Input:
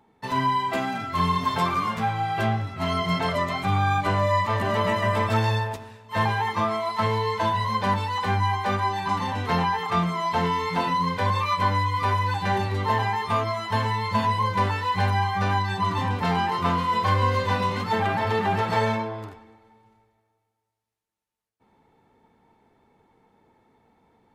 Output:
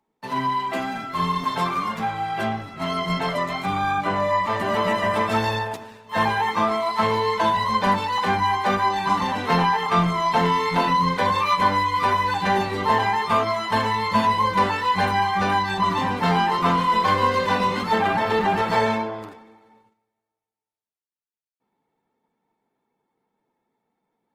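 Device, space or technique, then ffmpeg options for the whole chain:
video call: -filter_complex "[0:a]asettb=1/sr,asplit=3[s0][s1][s2];[s0]atrim=end=3.914[s3];[s1]atrim=start=3.91:end=4.47,asetpts=PTS-STARTPTS,afade=t=in:d=0.004:c=qsin,afade=t=out:st=0.556:d=0.004:c=qsin,acrossover=split=3200[s4][s5];[s5]acompressor=threshold=0.00501:ratio=4:attack=1:release=60[s6];[s4][s6]amix=inputs=2:normalize=0[s7];[s2]atrim=start=4.466[s8];[s3][s7]acrossfade=d=0.004:c1=hsin:c2=qsin[s9];[s9][s8]acrossfade=d=0.004:c1=qsin:c2=hsin,highpass=f=140:w=0.5412,highpass=f=140:w=1.3066,dynaudnorm=f=510:g=21:m=1.68,agate=range=0.224:threshold=0.00158:ratio=16:detection=peak" -ar 48000 -c:a libopus -b:a 20k

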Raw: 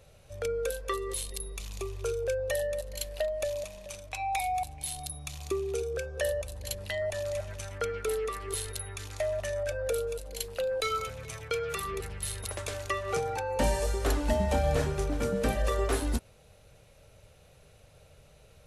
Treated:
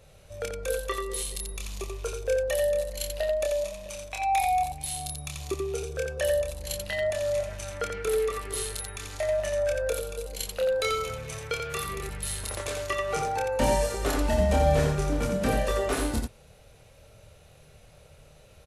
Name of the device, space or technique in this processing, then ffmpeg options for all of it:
slapback doubling: -filter_complex "[0:a]asplit=3[s0][s1][s2];[s1]adelay=27,volume=0.668[s3];[s2]adelay=87,volume=0.596[s4];[s0][s3][s4]amix=inputs=3:normalize=0,volume=1.12"

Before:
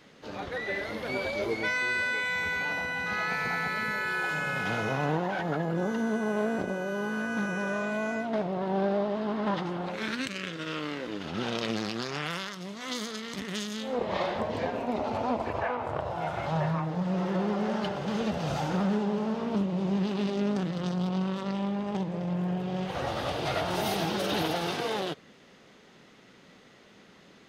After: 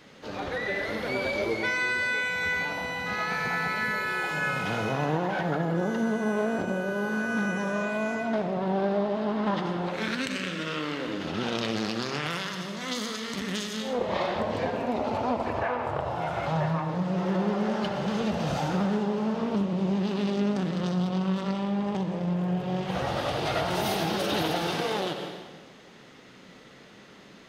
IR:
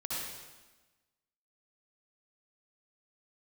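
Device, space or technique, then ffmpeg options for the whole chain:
ducked reverb: -filter_complex "[0:a]asplit=3[s0][s1][s2];[1:a]atrim=start_sample=2205[s3];[s1][s3]afir=irnorm=-1:irlink=0[s4];[s2]apad=whole_len=1211894[s5];[s4][s5]sidechaincompress=threshold=0.02:ratio=8:attack=28:release=255,volume=0.708[s6];[s0][s6]amix=inputs=2:normalize=0"

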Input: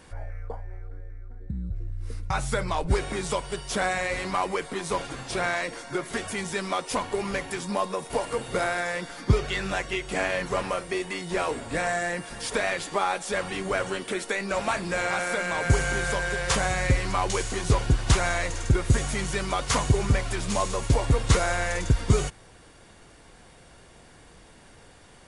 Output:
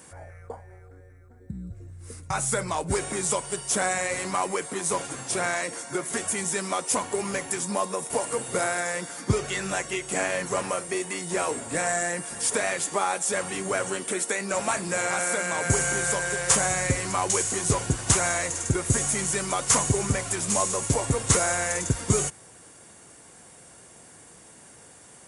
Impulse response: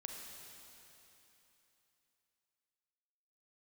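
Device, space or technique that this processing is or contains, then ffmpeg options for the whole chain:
budget condenser microphone: -af "highpass=110,highshelf=f=5700:t=q:w=1.5:g=9.5"

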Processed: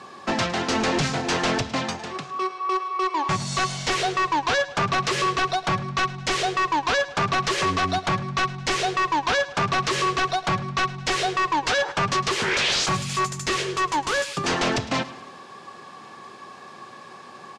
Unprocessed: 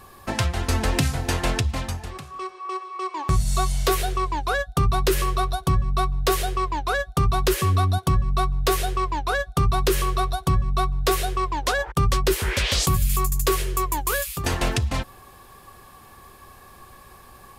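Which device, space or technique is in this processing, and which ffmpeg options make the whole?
synthesiser wavefolder: -af "highpass=f=160:w=0.5412,highpass=f=160:w=1.3066,aeval=exprs='0.075*(abs(mod(val(0)/0.075+3,4)-2)-1)':c=same,lowpass=f=6600:w=0.5412,lowpass=f=6600:w=1.3066,aecho=1:1:107|214|321|428:0.141|0.072|0.0367|0.0187,volume=2"

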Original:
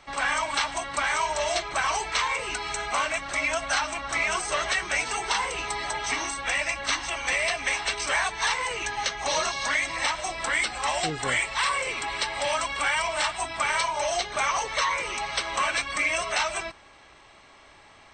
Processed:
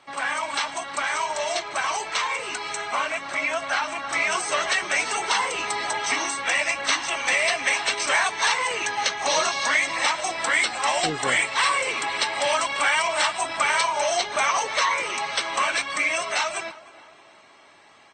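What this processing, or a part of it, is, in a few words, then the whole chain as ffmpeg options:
video call: -filter_complex "[0:a]asettb=1/sr,asplit=3[s0][s1][s2];[s0]atrim=end=2.804[s3];[s1]atrim=start=2.8:end=4.13,asetpts=PTS-STARTPTS,afade=t=in:d=0.004:c=qsin,afade=t=out:st=1.326:d=0.004:c=qsin,acrossover=split=3500[s4][s5];[s5]acompressor=threshold=0.01:ratio=4:attack=1:release=60[s6];[s4][s6]amix=inputs=2:normalize=0[s7];[s2]atrim=start=4.126[s8];[s3][s7]acrossfade=d=0.004:c1=hsin:c2=qsin[s9];[s9][s8]acrossfade=d=0.004:c1=qsin:c2=hsin,highpass=170,asplit=2[s10][s11];[s11]adelay=310,lowpass=f=2100:p=1,volume=0.133,asplit=2[s12][s13];[s13]adelay=310,lowpass=f=2100:p=1,volume=0.53,asplit=2[s14][s15];[s15]adelay=310,lowpass=f=2100:p=1,volume=0.53,asplit=2[s16][s17];[s17]adelay=310,lowpass=f=2100:p=1,volume=0.53,asplit=2[s18][s19];[s19]adelay=310,lowpass=f=2100:p=1,volume=0.53[s20];[s10][s12][s14][s16][s18][s20]amix=inputs=6:normalize=0,dynaudnorm=f=260:g=31:m=1.58" -ar 48000 -c:a libopus -b:a 32k

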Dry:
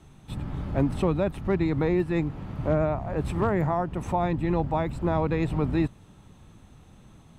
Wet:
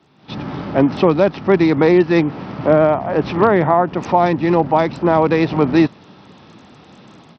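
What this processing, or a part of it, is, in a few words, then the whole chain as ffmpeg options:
Bluetooth headset: -af "highpass=230,dynaudnorm=f=170:g=3:m=4.47,aresample=16000,aresample=44100,volume=1.19" -ar 44100 -c:a sbc -b:a 64k

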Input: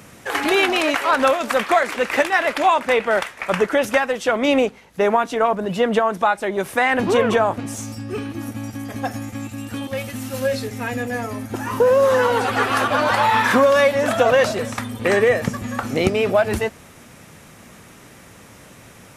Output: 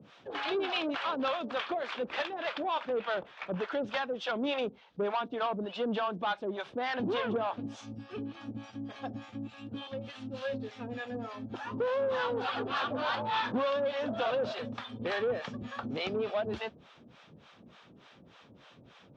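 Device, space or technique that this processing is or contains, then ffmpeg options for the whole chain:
guitar amplifier with harmonic tremolo: -filter_complex "[0:a]acrossover=split=580[s0][s1];[s0]aeval=exprs='val(0)*(1-1/2+1/2*cos(2*PI*3.4*n/s))':c=same[s2];[s1]aeval=exprs='val(0)*(1-1/2-1/2*cos(2*PI*3.4*n/s))':c=same[s3];[s2][s3]amix=inputs=2:normalize=0,asoftclip=type=tanh:threshold=0.112,highpass=81,equalizer=f=95:t=q:w=4:g=-7,equalizer=f=2000:t=q:w=4:g=-7,equalizer=f=3400:t=q:w=4:g=6,lowpass=f=4400:w=0.5412,lowpass=f=4400:w=1.3066,volume=0.473"

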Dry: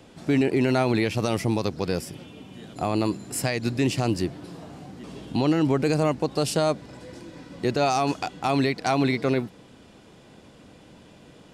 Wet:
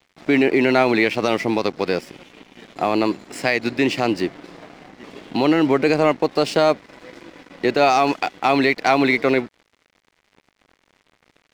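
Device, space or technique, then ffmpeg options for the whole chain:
pocket radio on a weak battery: -af "highpass=270,lowpass=4400,aeval=exprs='sgn(val(0))*max(abs(val(0))-0.00422,0)':c=same,equalizer=f=2100:t=o:w=0.48:g=5.5,volume=2.37"

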